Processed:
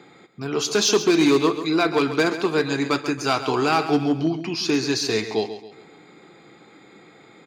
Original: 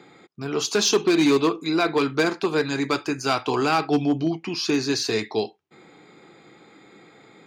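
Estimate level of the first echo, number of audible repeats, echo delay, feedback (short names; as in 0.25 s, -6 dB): -11.5 dB, 3, 0.136 s, 39%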